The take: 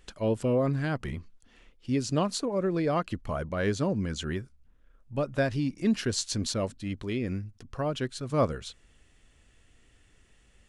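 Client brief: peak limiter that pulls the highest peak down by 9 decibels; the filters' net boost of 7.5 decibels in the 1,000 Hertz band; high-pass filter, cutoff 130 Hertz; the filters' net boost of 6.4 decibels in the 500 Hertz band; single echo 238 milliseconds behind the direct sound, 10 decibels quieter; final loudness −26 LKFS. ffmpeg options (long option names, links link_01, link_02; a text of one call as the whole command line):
ffmpeg -i in.wav -af "highpass=130,equalizer=frequency=500:width_type=o:gain=5.5,equalizer=frequency=1000:width_type=o:gain=8,alimiter=limit=-16dB:level=0:latency=1,aecho=1:1:238:0.316,volume=2dB" out.wav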